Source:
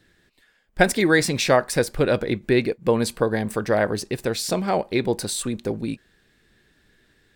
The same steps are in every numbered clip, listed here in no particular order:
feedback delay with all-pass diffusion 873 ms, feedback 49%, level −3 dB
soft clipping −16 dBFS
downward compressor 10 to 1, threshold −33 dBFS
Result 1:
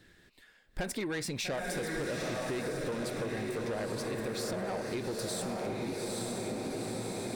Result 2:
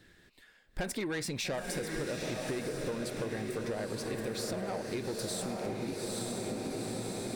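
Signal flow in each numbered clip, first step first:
feedback delay with all-pass diffusion, then soft clipping, then downward compressor
soft clipping, then feedback delay with all-pass diffusion, then downward compressor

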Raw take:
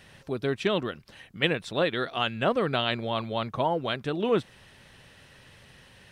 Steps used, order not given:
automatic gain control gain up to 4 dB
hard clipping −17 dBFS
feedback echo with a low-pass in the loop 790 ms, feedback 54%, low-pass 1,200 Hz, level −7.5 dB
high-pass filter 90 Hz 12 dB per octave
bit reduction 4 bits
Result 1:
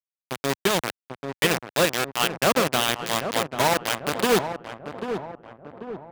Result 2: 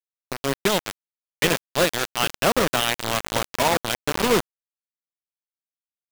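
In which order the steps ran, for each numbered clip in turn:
bit reduction, then high-pass filter, then hard clipping, then feedback echo with a low-pass in the loop, then automatic gain control
high-pass filter, then hard clipping, then feedback echo with a low-pass in the loop, then bit reduction, then automatic gain control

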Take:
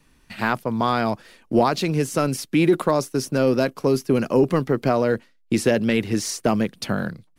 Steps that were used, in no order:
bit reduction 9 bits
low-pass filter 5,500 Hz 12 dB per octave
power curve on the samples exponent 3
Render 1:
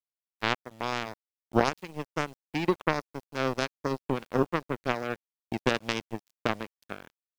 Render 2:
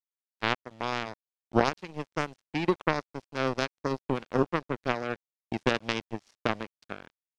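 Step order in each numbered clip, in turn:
low-pass filter, then power curve on the samples, then bit reduction
power curve on the samples, then bit reduction, then low-pass filter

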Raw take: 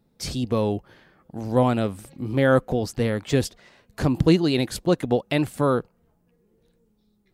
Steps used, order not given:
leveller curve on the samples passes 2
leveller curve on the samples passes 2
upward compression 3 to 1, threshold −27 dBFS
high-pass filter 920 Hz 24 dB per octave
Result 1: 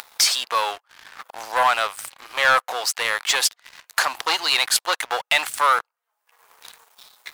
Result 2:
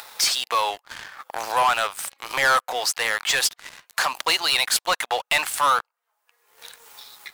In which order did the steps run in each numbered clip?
upward compression, then first leveller curve on the samples, then high-pass filter, then second leveller curve on the samples
high-pass filter, then first leveller curve on the samples, then upward compression, then second leveller curve on the samples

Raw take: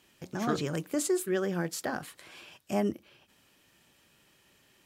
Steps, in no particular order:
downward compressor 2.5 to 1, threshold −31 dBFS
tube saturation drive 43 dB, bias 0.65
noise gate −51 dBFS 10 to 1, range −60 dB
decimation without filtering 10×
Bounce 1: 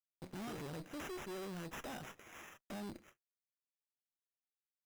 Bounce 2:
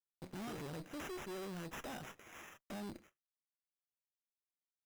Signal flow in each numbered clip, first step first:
noise gate, then downward compressor, then tube saturation, then decimation without filtering
downward compressor, then noise gate, then tube saturation, then decimation without filtering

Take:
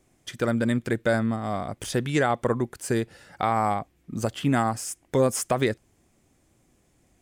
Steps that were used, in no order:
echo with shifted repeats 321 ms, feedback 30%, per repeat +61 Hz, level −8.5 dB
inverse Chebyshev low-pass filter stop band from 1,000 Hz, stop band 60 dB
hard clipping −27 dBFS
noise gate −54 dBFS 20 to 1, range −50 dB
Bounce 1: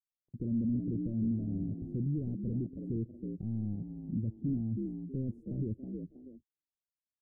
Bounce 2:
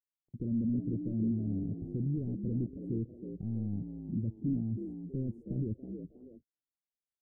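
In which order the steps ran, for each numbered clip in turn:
echo with shifted repeats, then hard clipping, then inverse Chebyshev low-pass filter, then noise gate
hard clipping, then inverse Chebyshev low-pass filter, then echo with shifted repeats, then noise gate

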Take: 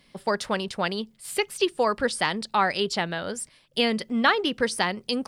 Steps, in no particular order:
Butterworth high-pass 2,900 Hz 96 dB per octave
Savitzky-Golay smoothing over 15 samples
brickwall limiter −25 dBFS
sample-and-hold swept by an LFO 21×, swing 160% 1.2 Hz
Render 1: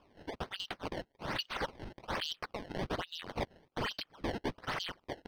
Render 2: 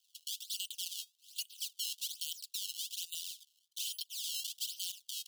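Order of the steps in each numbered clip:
Butterworth high-pass, then brickwall limiter, then sample-and-hold swept by an LFO, then Savitzky-Golay smoothing
Savitzky-Golay smoothing, then sample-and-hold swept by an LFO, then Butterworth high-pass, then brickwall limiter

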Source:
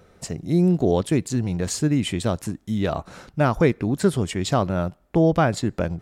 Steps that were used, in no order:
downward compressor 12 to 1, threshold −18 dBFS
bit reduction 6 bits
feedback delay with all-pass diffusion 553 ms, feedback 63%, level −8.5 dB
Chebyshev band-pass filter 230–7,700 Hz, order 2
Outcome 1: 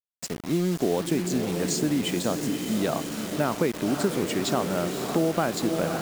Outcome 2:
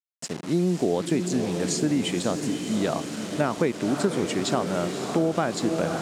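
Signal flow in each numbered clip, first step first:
feedback delay with all-pass diffusion, then downward compressor, then Chebyshev band-pass filter, then bit reduction
feedback delay with all-pass diffusion, then bit reduction, then Chebyshev band-pass filter, then downward compressor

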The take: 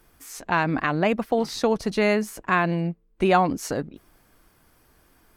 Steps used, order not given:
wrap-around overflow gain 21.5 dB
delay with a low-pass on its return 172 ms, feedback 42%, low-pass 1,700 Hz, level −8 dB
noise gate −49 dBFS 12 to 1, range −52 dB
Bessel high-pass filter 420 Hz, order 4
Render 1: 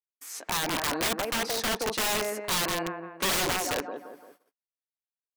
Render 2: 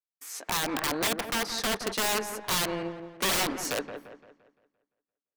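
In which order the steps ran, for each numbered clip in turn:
delay with a low-pass on its return, then noise gate, then Bessel high-pass filter, then wrap-around overflow
noise gate, then Bessel high-pass filter, then wrap-around overflow, then delay with a low-pass on its return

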